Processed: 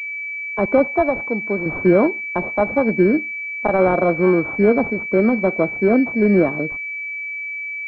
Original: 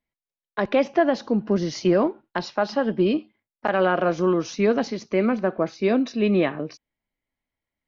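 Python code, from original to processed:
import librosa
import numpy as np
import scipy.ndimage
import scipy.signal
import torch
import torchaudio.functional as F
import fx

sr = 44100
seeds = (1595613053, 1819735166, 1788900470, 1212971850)

y = fx.highpass(x, sr, hz=570.0, slope=6, at=(0.84, 1.66))
y = fx.pwm(y, sr, carrier_hz=2300.0)
y = F.gain(torch.from_numpy(y), 5.5).numpy()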